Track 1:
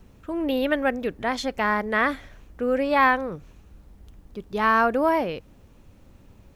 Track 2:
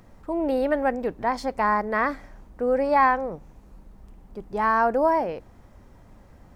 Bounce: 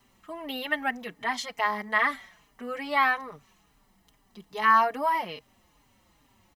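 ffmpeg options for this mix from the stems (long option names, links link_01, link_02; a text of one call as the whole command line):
ffmpeg -i stem1.wav -i stem2.wav -filter_complex "[0:a]highpass=frequency=1000:poles=1,aecho=1:1:1:0.5,volume=2dB[link_01];[1:a]adelay=4.4,volume=-18dB[link_02];[link_01][link_02]amix=inputs=2:normalize=0,asplit=2[link_03][link_04];[link_04]adelay=4.5,afreqshift=-2.4[link_05];[link_03][link_05]amix=inputs=2:normalize=1" out.wav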